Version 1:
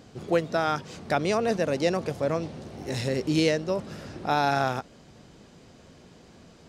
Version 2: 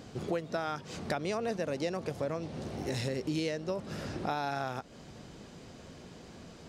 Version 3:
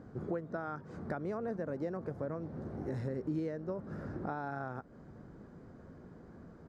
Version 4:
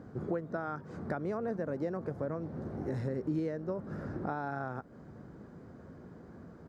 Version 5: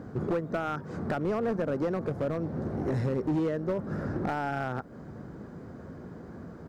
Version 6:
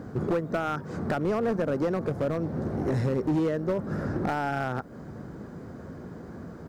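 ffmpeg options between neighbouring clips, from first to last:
-af "acompressor=threshold=0.02:ratio=4,volume=1.26"
-af "firequalizer=gain_entry='entry(310,0);entry(700,-5);entry(1500,-2);entry(2700,-24);entry(4400,-22)':delay=0.05:min_phase=1,volume=0.794"
-af "highpass=55,volume=1.33"
-af "volume=33.5,asoftclip=hard,volume=0.0299,volume=2.24"
-af "highshelf=f=5100:g=5,volume=1.33"

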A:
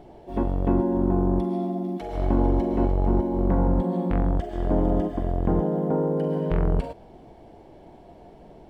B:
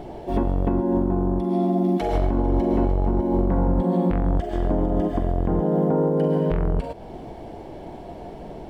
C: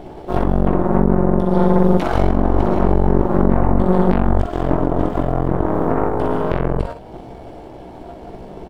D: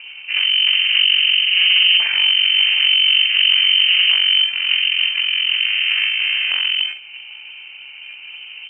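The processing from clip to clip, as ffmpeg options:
-filter_complex "[0:a]asplit=2[s0][s1];[s1]acompressor=threshold=0.0355:ratio=6,volume=1.12[s2];[s0][s2]amix=inputs=2:normalize=0,alimiter=limit=0.168:level=0:latency=1:release=327,volume=1.58"
-af "aecho=1:1:16|60:0.668|0.631,aeval=exprs='0.531*(cos(1*acos(clip(val(0)/0.531,-1,1)))-cos(1*PI/2))+0.266*(cos(4*acos(clip(val(0)/0.531,-1,1)))-cos(4*PI/2))':c=same,volume=0.891"
-af "lowpass=f=2600:t=q:w=0.5098,lowpass=f=2600:t=q:w=0.6013,lowpass=f=2600:t=q:w=0.9,lowpass=f=2600:t=q:w=2.563,afreqshift=-3100,volume=0.891"

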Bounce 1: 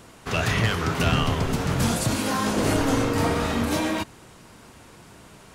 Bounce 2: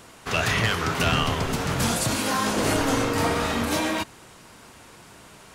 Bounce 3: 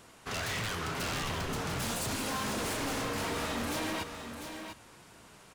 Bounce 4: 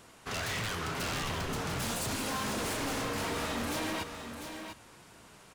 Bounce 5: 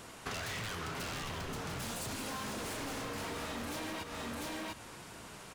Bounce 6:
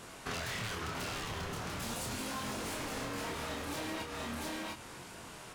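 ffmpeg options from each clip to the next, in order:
-af "lowshelf=f=460:g=-6,volume=1.33"
-filter_complex "[0:a]aeval=exprs='0.0841*(abs(mod(val(0)/0.0841+3,4)-2)-1)':c=same,asplit=2[s0][s1];[s1]aecho=0:1:697:0.398[s2];[s0][s2]amix=inputs=2:normalize=0,volume=0.398"
-af anull
-af "acompressor=threshold=0.00708:ratio=10,volume=1.88"
-af "flanger=delay=22.5:depth=5.6:speed=0.39,volume=1.58" -ar 48000 -c:a libopus -b:a 256k

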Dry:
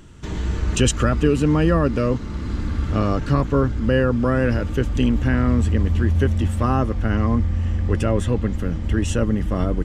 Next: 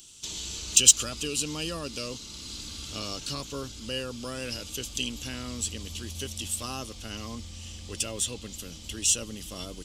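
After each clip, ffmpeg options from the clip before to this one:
-af "lowshelf=f=220:g=-8.5,aexciter=amount=10.8:drive=8.1:freq=2800,volume=0.178"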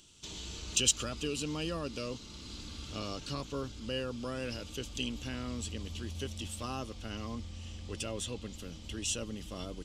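-af "lowpass=f=2000:p=1,volume=0.891"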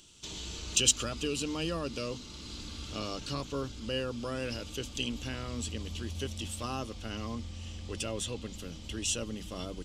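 -af "bandreject=f=50:t=h:w=6,bandreject=f=100:t=h:w=6,bandreject=f=150:t=h:w=6,bandreject=f=200:t=h:w=6,bandreject=f=250:t=h:w=6,volume=1.33"

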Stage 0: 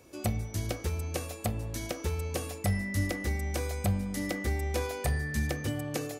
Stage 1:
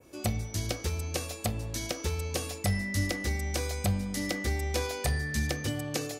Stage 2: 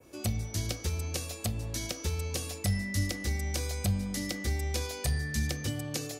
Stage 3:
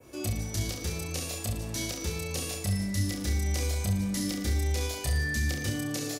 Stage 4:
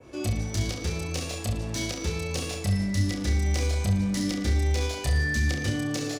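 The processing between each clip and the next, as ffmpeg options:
-af "adynamicequalizer=threshold=0.002:dfrequency=4800:dqfactor=0.76:tfrequency=4800:tqfactor=0.76:attack=5:release=100:ratio=0.375:range=3.5:mode=boostabove:tftype=bell"
-filter_complex "[0:a]acrossover=split=250|3000[s0][s1][s2];[s1]acompressor=threshold=0.00891:ratio=2.5[s3];[s0][s3][s2]amix=inputs=3:normalize=0"
-af "alimiter=level_in=1.06:limit=0.0631:level=0:latency=1:release=72,volume=0.944,aecho=1:1:30|67.5|114.4|173|246.2:0.631|0.398|0.251|0.158|0.1,volume=1.33"
-af "adynamicsmooth=sensitivity=5.5:basefreq=5600,volume=1.58"

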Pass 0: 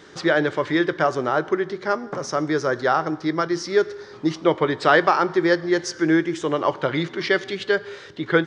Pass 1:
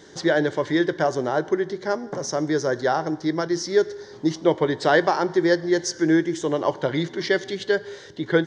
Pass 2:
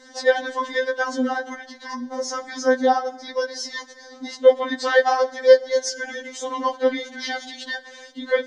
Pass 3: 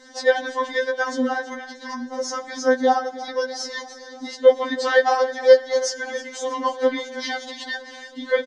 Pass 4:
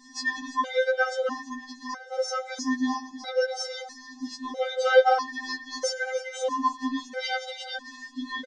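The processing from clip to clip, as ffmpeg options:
-af "equalizer=f=1250:t=o:w=0.33:g=-12,equalizer=f=2500:t=o:w=0.33:g=-12,equalizer=f=6300:t=o:w=0.33:g=5"
-af "afftfilt=real='re*3.46*eq(mod(b,12),0)':imag='im*3.46*eq(mod(b,12),0)':win_size=2048:overlap=0.75,volume=1.58"
-af "aecho=1:1:319|638|957|1276|1595|1914:0.15|0.0883|0.0521|0.0307|0.0181|0.0107"
-af "aresample=22050,aresample=44100,afftfilt=real='re*gt(sin(2*PI*0.77*pts/sr)*(1-2*mod(floor(b*sr/1024/400),2)),0)':imag='im*gt(sin(2*PI*0.77*pts/sr)*(1-2*mod(floor(b*sr/1024/400),2)),0)':win_size=1024:overlap=0.75"

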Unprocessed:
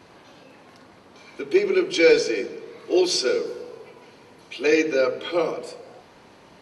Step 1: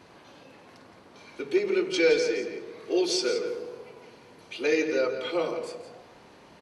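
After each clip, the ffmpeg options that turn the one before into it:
-filter_complex "[0:a]asplit=2[s0][s1];[s1]acompressor=threshold=0.0501:ratio=6,volume=0.708[s2];[s0][s2]amix=inputs=2:normalize=0,asplit=2[s3][s4];[s4]adelay=169.1,volume=0.355,highshelf=f=4000:g=-3.8[s5];[s3][s5]amix=inputs=2:normalize=0,volume=0.422"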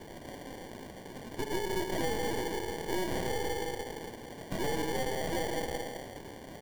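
-af "acompressor=threshold=0.0141:ratio=3,acrusher=samples=34:mix=1:aa=0.000001,aeval=exprs='0.0473*(cos(1*acos(clip(val(0)/0.0473,-1,1)))-cos(1*PI/2))+0.0106*(cos(5*acos(clip(val(0)/0.0473,-1,1)))-cos(5*PI/2))+0.0133*(cos(6*acos(clip(val(0)/0.0473,-1,1)))-cos(6*PI/2))':c=same"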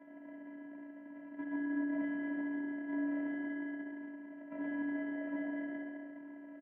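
-af "afftfilt=real='hypot(re,im)*cos(PI*b)':imag='0':win_size=512:overlap=0.75,highpass=f=200:t=q:w=0.5412,highpass=f=200:t=q:w=1.307,lowpass=f=2100:t=q:w=0.5176,lowpass=f=2100:t=q:w=0.7071,lowpass=f=2100:t=q:w=1.932,afreqshift=-57,aecho=1:1:66|132|198|264|330|396|462|528:0.501|0.296|0.174|0.103|0.0607|0.0358|0.0211|0.0125,volume=0.596"

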